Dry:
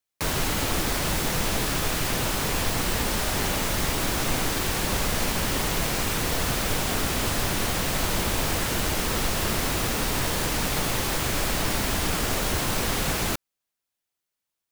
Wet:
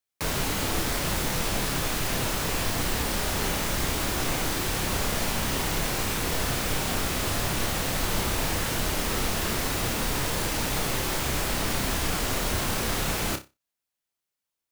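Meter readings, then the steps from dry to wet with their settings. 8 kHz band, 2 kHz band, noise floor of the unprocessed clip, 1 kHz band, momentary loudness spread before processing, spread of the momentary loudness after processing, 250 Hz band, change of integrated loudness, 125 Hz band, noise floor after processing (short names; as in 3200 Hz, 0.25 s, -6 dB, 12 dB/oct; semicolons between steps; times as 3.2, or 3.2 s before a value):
-1.5 dB, -1.5 dB, -85 dBFS, -1.5 dB, 0 LU, 0 LU, -1.5 dB, -1.5 dB, -1.5 dB, under -85 dBFS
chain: flutter echo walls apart 5.2 m, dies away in 0.23 s; gain -2.5 dB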